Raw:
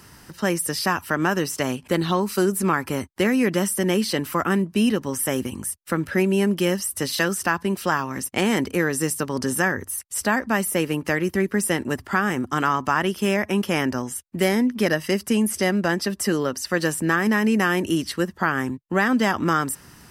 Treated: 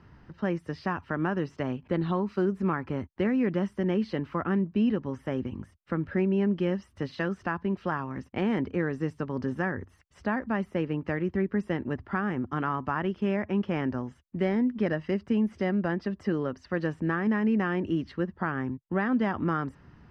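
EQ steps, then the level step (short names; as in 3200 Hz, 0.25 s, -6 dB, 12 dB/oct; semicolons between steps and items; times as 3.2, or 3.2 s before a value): LPF 2100 Hz 6 dB/oct; air absorption 210 m; low shelf 170 Hz +7 dB; -7.0 dB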